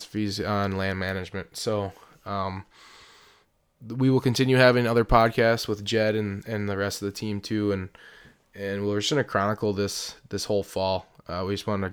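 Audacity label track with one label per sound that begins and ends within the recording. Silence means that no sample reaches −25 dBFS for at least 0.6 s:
3.920000	7.830000	sound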